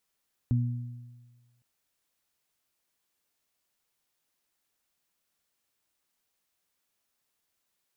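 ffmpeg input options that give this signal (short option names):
-f lavfi -i "aevalsrc='0.0891*pow(10,-3*t/1.39)*sin(2*PI*121*t)+0.0398*pow(10,-3*t/1.07)*sin(2*PI*242*t)':d=1.11:s=44100"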